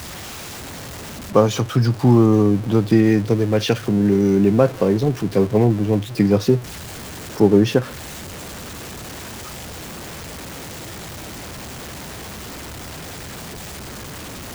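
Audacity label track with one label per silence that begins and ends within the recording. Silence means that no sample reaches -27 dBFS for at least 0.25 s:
6.590000	7.370000	silence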